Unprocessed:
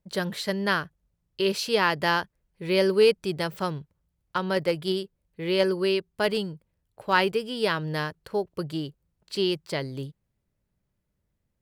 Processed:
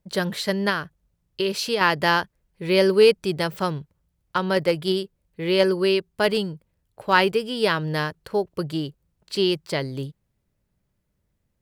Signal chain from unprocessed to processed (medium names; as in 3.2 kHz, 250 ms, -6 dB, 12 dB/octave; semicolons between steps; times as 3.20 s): 0.69–1.81 s: compression 4:1, threshold -25 dBFS, peak gain reduction 6.5 dB; trim +4 dB